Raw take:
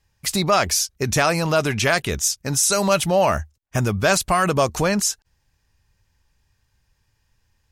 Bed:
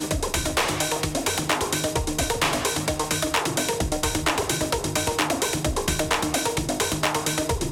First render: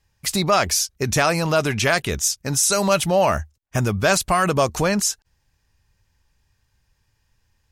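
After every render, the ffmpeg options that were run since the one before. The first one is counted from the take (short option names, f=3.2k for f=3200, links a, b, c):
-af anull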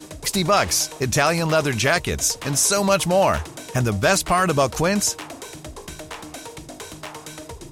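-filter_complex "[1:a]volume=-12dB[a];[0:a][a]amix=inputs=2:normalize=0"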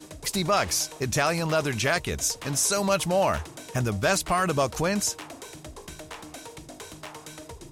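-af "volume=-5.5dB"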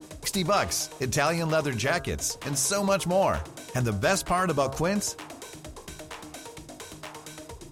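-af "bandreject=f=135.2:t=h:w=4,bandreject=f=270.4:t=h:w=4,bandreject=f=405.6:t=h:w=4,bandreject=f=540.8:t=h:w=4,bandreject=f=676:t=h:w=4,bandreject=f=811.2:t=h:w=4,bandreject=f=946.4:t=h:w=4,bandreject=f=1.0816k:t=h:w=4,bandreject=f=1.2168k:t=h:w=4,bandreject=f=1.352k:t=h:w=4,bandreject=f=1.4872k:t=h:w=4,bandreject=f=1.6224k:t=h:w=4,adynamicequalizer=threshold=0.0112:dfrequency=1500:dqfactor=0.7:tfrequency=1500:tqfactor=0.7:attack=5:release=100:ratio=0.375:range=2:mode=cutabove:tftype=highshelf"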